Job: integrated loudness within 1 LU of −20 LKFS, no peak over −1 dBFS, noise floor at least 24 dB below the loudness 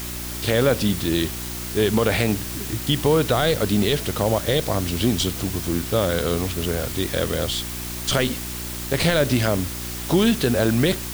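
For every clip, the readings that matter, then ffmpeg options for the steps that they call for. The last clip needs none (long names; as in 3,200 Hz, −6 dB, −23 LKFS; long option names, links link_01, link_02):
mains hum 60 Hz; hum harmonics up to 360 Hz; level of the hum −32 dBFS; background noise floor −31 dBFS; target noise floor −46 dBFS; integrated loudness −22.0 LKFS; sample peak −7.0 dBFS; target loudness −20.0 LKFS
→ -af "bandreject=frequency=60:width_type=h:width=4,bandreject=frequency=120:width_type=h:width=4,bandreject=frequency=180:width_type=h:width=4,bandreject=frequency=240:width_type=h:width=4,bandreject=frequency=300:width_type=h:width=4,bandreject=frequency=360:width_type=h:width=4"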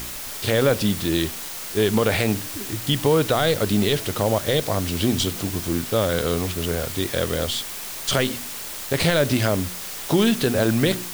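mains hum none found; background noise floor −33 dBFS; target noise floor −46 dBFS
→ -af "afftdn=noise_reduction=13:noise_floor=-33"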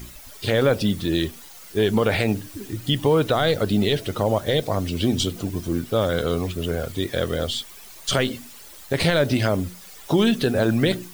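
background noise floor −43 dBFS; target noise floor −47 dBFS
→ -af "afftdn=noise_reduction=6:noise_floor=-43"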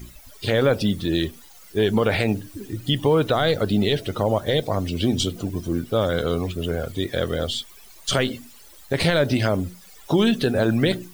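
background noise floor −47 dBFS; integrated loudness −23.0 LKFS; sample peak −8.0 dBFS; target loudness −20.0 LKFS
→ -af "volume=3dB"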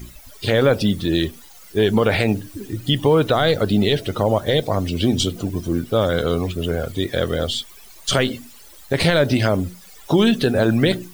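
integrated loudness −20.0 LKFS; sample peak −5.0 dBFS; background noise floor −44 dBFS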